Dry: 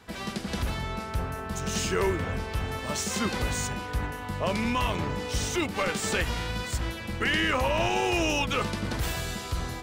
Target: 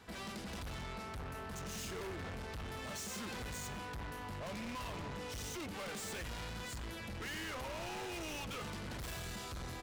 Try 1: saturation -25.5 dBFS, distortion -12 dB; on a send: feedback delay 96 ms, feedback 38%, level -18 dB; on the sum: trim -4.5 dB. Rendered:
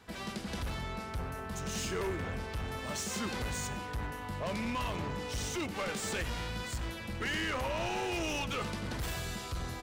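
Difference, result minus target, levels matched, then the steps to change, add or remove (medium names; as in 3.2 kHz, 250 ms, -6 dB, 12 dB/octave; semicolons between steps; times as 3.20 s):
saturation: distortion -8 dB
change: saturation -37 dBFS, distortion -5 dB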